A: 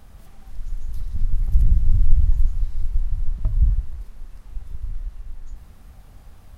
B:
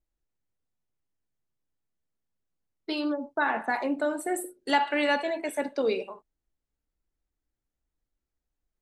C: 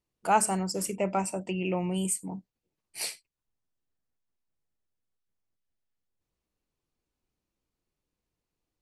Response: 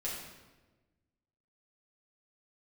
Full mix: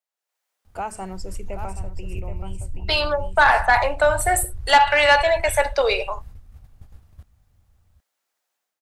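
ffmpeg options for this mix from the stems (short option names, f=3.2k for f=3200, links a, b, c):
-filter_complex "[0:a]acompressor=threshold=-17dB:ratio=6,equalizer=f=88:t=o:w=0.99:g=10.5,adelay=650,volume=-3dB,asplit=2[a][b];[b]volume=-16.5dB[c];[1:a]highpass=f=600:w=0.5412,highpass=f=600:w=1.3066,dynaudnorm=f=120:g=5:m=13dB,asoftclip=type=tanh:threshold=-8dB,volume=2dB[d];[2:a]highpass=210,highshelf=f=4.9k:g=-10,adelay=500,volume=-1dB,asplit=2[e][f];[f]volume=-12.5dB[g];[a][e]amix=inputs=2:normalize=0,agate=range=-10dB:threshold=-40dB:ratio=16:detection=peak,acompressor=threshold=-25dB:ratio=6,volume=0dB[h];[c][g]amix=inputs=2:normalize=0,aecho=0:1:776:1[i];[d][h][i]amix=inputs=3:normalize=0"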